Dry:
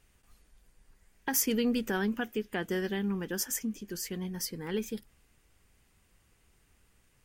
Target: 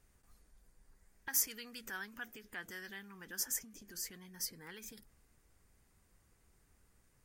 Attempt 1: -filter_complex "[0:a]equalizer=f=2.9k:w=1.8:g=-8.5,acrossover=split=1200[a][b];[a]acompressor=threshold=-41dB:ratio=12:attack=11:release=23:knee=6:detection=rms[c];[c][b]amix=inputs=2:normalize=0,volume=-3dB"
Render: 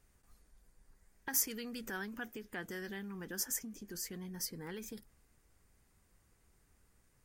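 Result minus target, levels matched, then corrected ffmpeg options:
compressor: peak gain reduction -10.5 dB
-filter_complex "[0:a]equalizer=f=2.9k:w=1.8:g=-8.5,acrossover=split=1200[a][b];[a]acompressor=threshold=-52.5dB:ratio=12:attack=11:release=23:knee=6:detection=rms[c];[c][b]amix=inputs=2:normalize=0,volume=-3dB"

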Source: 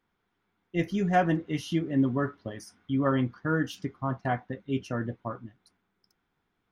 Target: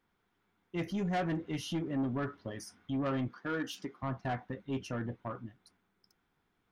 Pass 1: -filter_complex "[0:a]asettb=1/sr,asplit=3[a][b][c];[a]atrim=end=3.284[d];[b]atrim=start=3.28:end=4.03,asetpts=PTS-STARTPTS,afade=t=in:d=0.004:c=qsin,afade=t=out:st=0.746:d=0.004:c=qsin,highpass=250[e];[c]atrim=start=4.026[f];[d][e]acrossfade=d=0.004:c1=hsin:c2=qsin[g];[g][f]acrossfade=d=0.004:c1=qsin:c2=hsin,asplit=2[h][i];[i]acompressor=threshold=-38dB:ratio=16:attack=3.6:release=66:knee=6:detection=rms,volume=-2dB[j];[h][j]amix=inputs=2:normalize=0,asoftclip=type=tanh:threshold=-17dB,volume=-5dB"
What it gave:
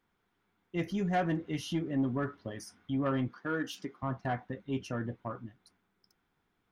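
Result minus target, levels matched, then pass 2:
soft clip: distortion -7 dB
-filter_complex "[0:a]asettb=1/sr,asplit=3[a][b][c];[a]atrim=end=3.284[d];[b]atrim=start=3.28:end=4.03,asetpts=PTS-STARTPTS,afade=t=in:d=0.004:c=qsin,afade=t=out:st=0.746:d=0.004:c=qsin,highpass=250[e];[c]atrim=start=4.026[f];[d][e]acrossfade=d=0.004:c1=hsin:c2=qsin[g];[g][f]acrossfade=d=0.004:c1=qsin:c2=hsin,asplit=2[h][i];[i]acompressor=threshold=-38dB:ratio=16:attack=3.6:release=66:knee=6:detection=rms,volume=-2dB[j];[h][j]amix=inputs=2:normalize=0,asoftclip=type=tanh:threshold=-23dB,volume=-5dB"

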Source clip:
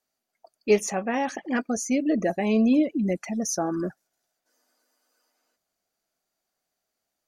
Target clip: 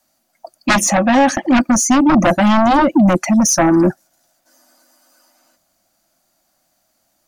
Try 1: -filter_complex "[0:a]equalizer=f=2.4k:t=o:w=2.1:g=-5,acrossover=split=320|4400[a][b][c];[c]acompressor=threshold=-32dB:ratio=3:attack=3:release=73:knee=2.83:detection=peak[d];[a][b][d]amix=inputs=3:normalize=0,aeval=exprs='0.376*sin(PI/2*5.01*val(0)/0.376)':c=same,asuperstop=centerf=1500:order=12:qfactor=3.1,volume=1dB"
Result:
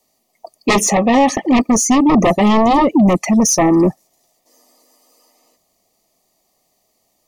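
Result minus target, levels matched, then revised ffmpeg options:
2000 Hz band -4.0 dB
-filter_complex "[0:a]equalizer=f=2.4k:t=o:w=2.1:g=-5,acrossover=split=320|4400[a][b][c];[c]acompressor=threshold=-32dB:ratio=3:attack=3:release=73:knee=2.83:detection=peak[d];[a][b][d]amix=inputs=3:normalize=0,aeval=exprs='0.376*sin(PI/2*5.01*val(0)/0.376)':c=same,asuperstop=centerf=430:order=12:qfactor=3.1,volume=1dB"

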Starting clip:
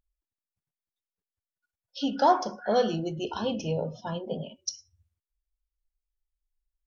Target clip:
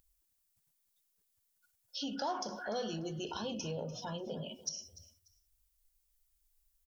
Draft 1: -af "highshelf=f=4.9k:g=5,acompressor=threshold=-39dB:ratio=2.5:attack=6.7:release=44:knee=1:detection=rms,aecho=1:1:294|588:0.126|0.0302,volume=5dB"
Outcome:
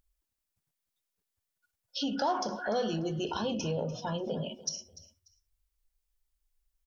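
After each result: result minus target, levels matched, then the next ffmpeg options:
compressor: peak gain reduction -7 dB; 8000 Hz band -3.0 dB
-af "highshelf=f=4.9k:g=5,acompressor=threshold=-50.5dB:ratio=2.5:attack=6.7:release=44:knee=1:detection=rms,aecho=1:1:294|588:0.126|0.0302,volume=5dB"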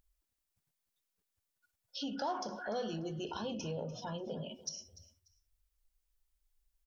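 8000 Hz band -2.5 dB
-af "highshelf=f=4.9k:g=15.5,acompressor=threshold=-50.5dB:ratio=2.5:attack=6.7:release=44:knee=1:detection=rms,aecho=1:1:294|588:0.126|0.0302,volume=5dB"

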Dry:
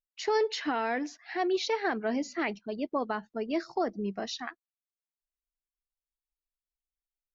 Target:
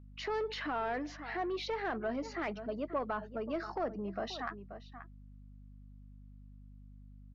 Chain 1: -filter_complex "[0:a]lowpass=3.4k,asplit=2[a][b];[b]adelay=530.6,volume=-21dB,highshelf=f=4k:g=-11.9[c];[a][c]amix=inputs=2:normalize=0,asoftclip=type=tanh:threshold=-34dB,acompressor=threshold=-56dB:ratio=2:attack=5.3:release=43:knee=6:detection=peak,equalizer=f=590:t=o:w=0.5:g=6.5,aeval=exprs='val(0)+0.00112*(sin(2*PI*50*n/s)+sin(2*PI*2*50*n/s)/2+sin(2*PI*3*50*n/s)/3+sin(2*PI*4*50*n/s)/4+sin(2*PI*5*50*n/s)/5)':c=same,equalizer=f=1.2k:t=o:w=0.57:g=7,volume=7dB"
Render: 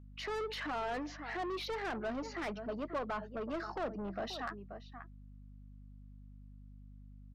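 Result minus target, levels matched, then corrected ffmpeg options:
soft clip: distortion +10 dB
-filter_complex "[0:a]lowpass=3.4k,asplit=2[a][b];[b]adelay=530.6,volume=-21dB,highshelf=f=4k:g=-11.9[c];[a][c]amix=inputs=2:normalize=0,asoftclip=type=tanh:threshold=-23.5dB,acompressor=threshold=-56dB:ratio=2:attack=5.3:release=43:knee=6:detection=peak,equalizer=f=590:t=o:w=0.5:g=6.5,aeval=exprs='val(0)+0.00112*(sin(2*PI*50*n/s)+sin(2*PI*2*50*n/s)/2+sin(2*PI*3*50*n/s)/3+sin(2*PI*4*50*n/s)/4+sin(2*PI*5*50*n/s)/5)':c=same,equalizer=f=1.2k:t=o:w=0.57:g=7,volume=7dB"

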